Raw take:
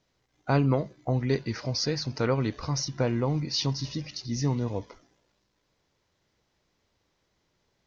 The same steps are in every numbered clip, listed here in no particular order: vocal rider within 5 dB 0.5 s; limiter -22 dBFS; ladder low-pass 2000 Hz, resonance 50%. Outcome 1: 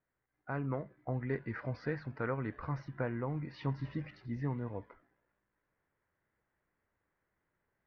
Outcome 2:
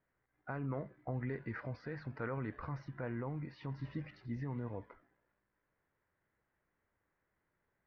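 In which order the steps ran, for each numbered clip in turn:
ladder low-pass > limiter > vocal rider; limiter > vocal rider > ladder low-pass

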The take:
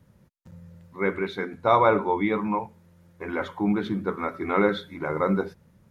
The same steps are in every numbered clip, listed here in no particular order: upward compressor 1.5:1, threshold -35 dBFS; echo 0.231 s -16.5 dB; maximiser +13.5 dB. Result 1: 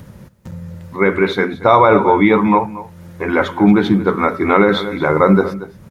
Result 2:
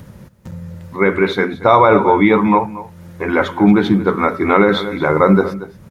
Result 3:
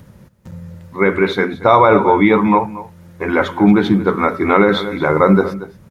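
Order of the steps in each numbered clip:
upward compressor > echo > maximiser; echo > upward compressor > maximiser; echo > maximiser > upward compressor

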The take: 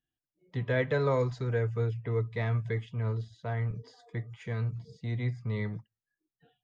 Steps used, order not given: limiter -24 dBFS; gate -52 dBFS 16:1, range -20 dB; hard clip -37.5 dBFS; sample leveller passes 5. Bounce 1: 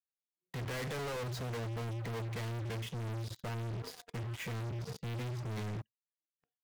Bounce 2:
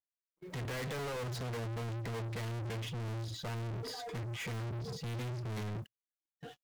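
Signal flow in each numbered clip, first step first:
sample leveller > limiter > hard clip > gate; limiter > hard clip > sample leveller > gate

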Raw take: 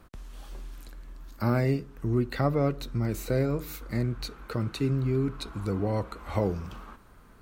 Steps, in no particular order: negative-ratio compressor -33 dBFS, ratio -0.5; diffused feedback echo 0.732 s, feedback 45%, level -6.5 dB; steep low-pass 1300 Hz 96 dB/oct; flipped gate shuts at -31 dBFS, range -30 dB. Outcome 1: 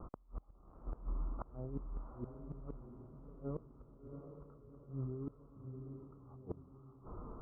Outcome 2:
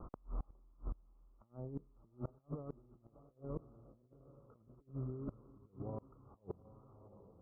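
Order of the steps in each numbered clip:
negative-ratio compressor > steep low-pass > flipped gate > diffused feedback echo; diffused feedback echo > negative-ratio compressor > steep low-pass > flipped gate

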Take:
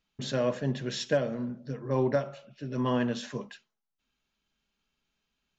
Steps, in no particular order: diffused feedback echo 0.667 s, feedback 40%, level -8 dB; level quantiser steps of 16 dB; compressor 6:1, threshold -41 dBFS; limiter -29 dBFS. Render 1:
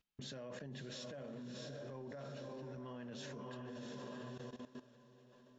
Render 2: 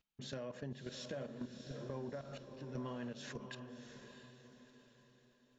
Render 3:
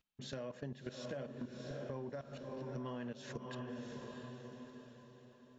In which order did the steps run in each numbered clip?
diffused feedback echo > limiter > compressor > level quantiser; level quantiser > limiter > compressor > diffused feedback echo; level quantiser > diffused feedback echo > compressor > limiter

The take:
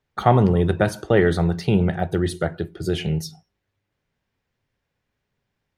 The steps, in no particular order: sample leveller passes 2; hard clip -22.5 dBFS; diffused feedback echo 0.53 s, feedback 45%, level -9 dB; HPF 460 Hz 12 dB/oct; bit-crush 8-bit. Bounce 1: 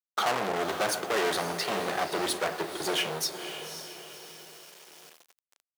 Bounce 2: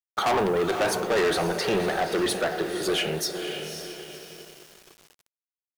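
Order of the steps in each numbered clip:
sample leveller > hard clip > diffused feedback echo > bit-crush > HPF; HPF > hard clip > diffused feedback echo > sample leveller > bit-crush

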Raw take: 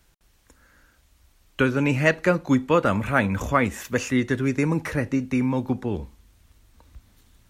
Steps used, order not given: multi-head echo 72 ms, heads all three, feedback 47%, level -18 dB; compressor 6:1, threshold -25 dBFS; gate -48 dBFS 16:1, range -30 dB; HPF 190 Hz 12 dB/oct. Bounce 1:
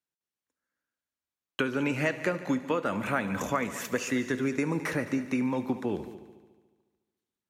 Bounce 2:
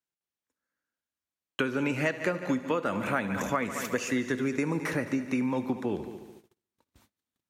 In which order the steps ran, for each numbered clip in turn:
HPF > compressor > gate > multi-head echo; multi-head echo > gate > HPF > compressor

